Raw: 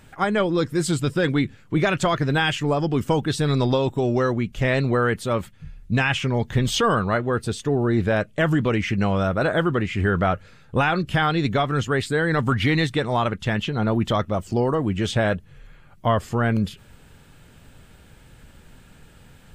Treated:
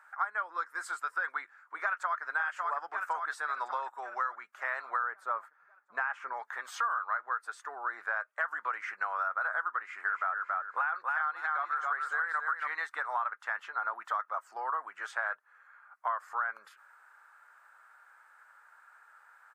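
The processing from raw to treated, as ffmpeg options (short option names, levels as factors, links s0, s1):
-filter_complex "[0:a]asplit=2[s0][s1];[s1]afade=t=in:st=1.82:d=0.01,afade=t=out:st=2.23:d=0.01,aecho=0:1:550|1100|1650|2200|2750|3300|3850:0.501187|0.275653|0.151609|0.083385|0.0458618|0.025224|0.0138732[s2];[s0][s2]amix=inputs=2:normalize=0,asettb=1/sr,asplit=3[s3][s4][s5];[s3]atrim=end=5.034[s6];[s4]atrim=start=5.03:end=6.33,asetpts=PTS-STARTPTS,afade=t=in:d=0.004:c=qsin,afade=t=out:st=1.296:d=0.004:c=qsin,tiltshelf=f=1100:g=7.5[s7];[s5]atrim=start=6.326[s8];[s6][s7]acrossfade=d=0.004:c1=hsin:c2=qsin[s9];[s9][s8]acrossfade=d=0.004:c1=qsin:c2=hsin,asplit=3[s10][s11][s12];[s10]afade=t=out:st=10.07:d=0.02[s13];[s11]aecho=1:1:277|554|831:0.596|0.143|0.0343,afade=t=in:st=10.07:d=0.02,afade=t=out:st=12.71:d=0.02[s14];[s12]afade=t=in:st=12.71:d=0.02[s15];[s13][s14][s15]amix=inputs=3:normalize=0,highpass=f=930:w=0.5412,highpass=f=930:w=1.3066,highshelf=f=2100:t=q:w=3:g=-13.5,acompressor=threshold=0.0501:ratio=6,volume=0.708"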